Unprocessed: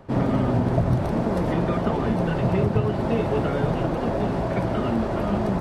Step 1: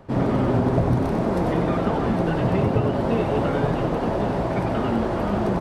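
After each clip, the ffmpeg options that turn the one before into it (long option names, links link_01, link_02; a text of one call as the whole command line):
ffmpeg -i in.wav -filter_complex "[0:a]asplit=7[link_01][link_02][link_03][link_04][link_05][link_06][link_07];[link_02]adelay=95,afreqshift=140,volume=-7dB[link_08];[link_03]adelay=190,afreqshift=280,volume=-13.4dB[link_09];[link_04]adelay=285,afreqshift=420,volume=-19.8dB[link_10];[link_05]adelay=380,afreqshift=560,volume=-26.1dB[link_11];[link_06]adelay=475,afreqshift=700,volume=-32.5dB[link_12];[link_07]adelay=570,afreqshift=840,volume=-38.9dB[link_13];[link_01][link_08][link_09][link_10][link_11][link_12][link_13]amix=inputs=7:normalize=0" out.wav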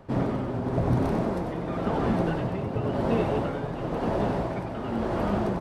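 ffmpeg -i in.wav -af "tremolo=f=0.95:d=0.59,volume=-2.5dB" out.wav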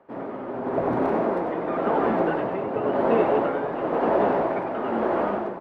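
ffmpeg -i in.wav -filter_complex "[0:a]dynaudnorm=framelen=150:gausssize=7:maxgain=12.5dB,acrossover=split=260 2500:gain=0.0708 1 0.1[link_01][link_02][link_03];[link_01][link_02][link_03]amix=inputs=3:normalize=0,volume=-3.5dB" out.wav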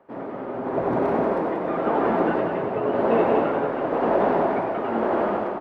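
ffmpeg -i in.wav -af "aecho=1:1:183.7|282.8:0.501|0.282" out.wav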